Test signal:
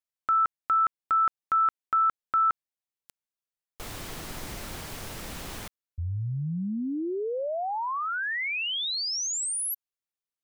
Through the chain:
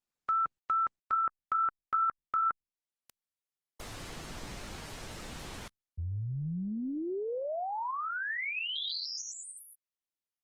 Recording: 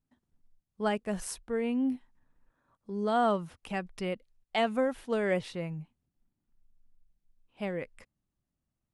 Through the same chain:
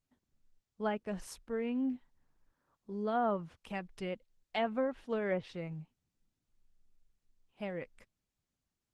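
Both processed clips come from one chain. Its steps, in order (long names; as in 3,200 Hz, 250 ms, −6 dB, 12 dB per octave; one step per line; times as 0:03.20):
tape wow and flutter 18 cents
treble cut that deepens with the level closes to 1,600 Hz, closed at −22.5 dBFS
level −4.5 dB
Opus 16 kbit/s 48,000 Hz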